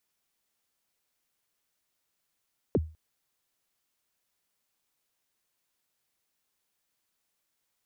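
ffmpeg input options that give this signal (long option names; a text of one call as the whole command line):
ffmpeg -f lavfi -i "aevalsrc='0.126*pow(10,-3*t/0.33)*sin(2*PI*(540*0.038/log(79/540)*(exp(log(79/540)*min(t,0.038)/0.038)-1)+79*max(t-0.038,0)))':duration=0.2:sample_rate=44100" out.wav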